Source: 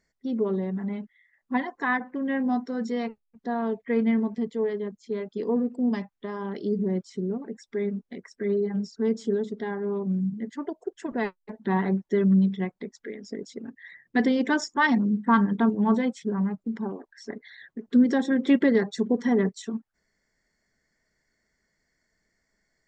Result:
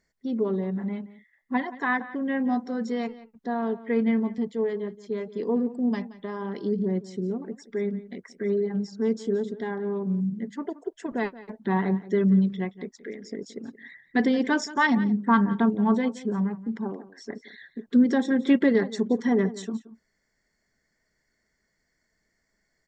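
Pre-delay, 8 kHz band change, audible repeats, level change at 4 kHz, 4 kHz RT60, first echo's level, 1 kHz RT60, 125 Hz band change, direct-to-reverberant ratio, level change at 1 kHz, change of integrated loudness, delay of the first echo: none, n/a, 1, 0.0 dB, none, -17.0 dB, none, 0.0 dB, none, 0.0 dB, 0.0 dB, 0.175 s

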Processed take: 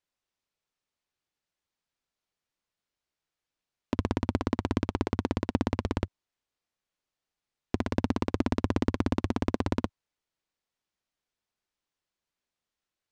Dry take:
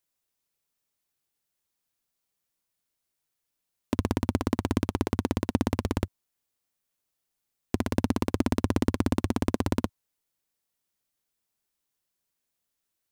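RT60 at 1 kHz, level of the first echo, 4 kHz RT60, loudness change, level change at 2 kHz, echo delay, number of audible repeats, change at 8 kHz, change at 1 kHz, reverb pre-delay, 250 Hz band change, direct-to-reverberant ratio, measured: none, none, none, -2.0 dB, -1.0 dB, none, none, -8.5 dB, -0.5 dB, none, -2.0 dB, none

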